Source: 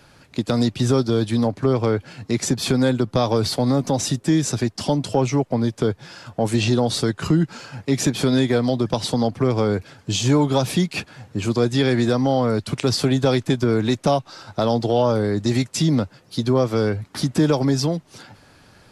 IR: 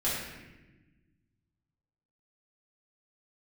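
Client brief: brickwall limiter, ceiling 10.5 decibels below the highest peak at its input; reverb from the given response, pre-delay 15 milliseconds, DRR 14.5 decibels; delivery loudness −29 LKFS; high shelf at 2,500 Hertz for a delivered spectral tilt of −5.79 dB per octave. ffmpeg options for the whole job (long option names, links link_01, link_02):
-filter_complex "[0:a]highshelf=frequency=2500:gain=-5.5,alimiter=limit=-17.5dB:level=0:latency=1,asplit=2[link_01][link_02];[1:a]atrim=start_sample=2205,adelay=15[link_03];[link_02][link_03]afir=irnorm=-1:irlink=0,volume=-23dB[link_04];[link_01][link_04]amix=inputs=2:normalize=0,volume=-2dB"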